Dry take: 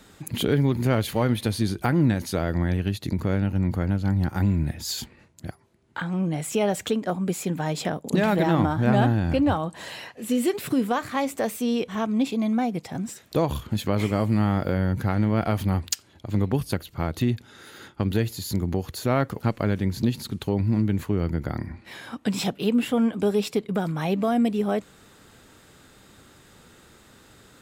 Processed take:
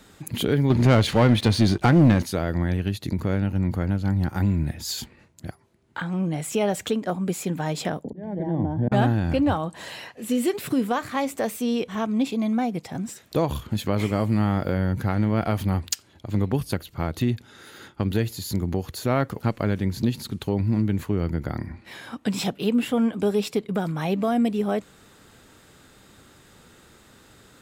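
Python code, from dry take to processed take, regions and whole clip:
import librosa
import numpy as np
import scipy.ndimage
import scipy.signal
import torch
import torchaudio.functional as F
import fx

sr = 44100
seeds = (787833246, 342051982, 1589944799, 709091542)

y = fx.chain(x, sr, fx.lowpass(hz=6400.0, slope=12),
    fx.leveller(passes=2), at=(0.7, 2.23))
y = fx.chain(y, sr, fx.auto_swell(attack_ms=635.0),
    fx.moving_average(points=34),
    fx.band_squash(depth_pct=40), at=(8.04, 8.92))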